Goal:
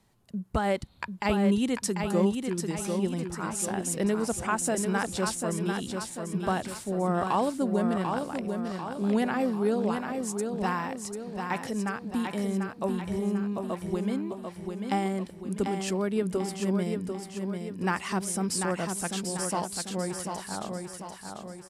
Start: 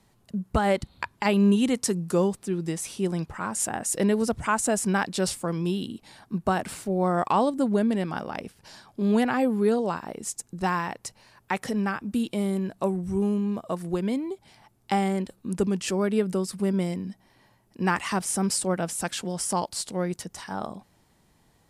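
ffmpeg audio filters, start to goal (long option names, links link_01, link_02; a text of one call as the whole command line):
ffmpeg -i in.wav -af "aecho=1:1:743|1486|2229|2972|3715|4458:0.531|0.26|0.127|0.0625|0.0306|0.015,volume=-4dB" out.wav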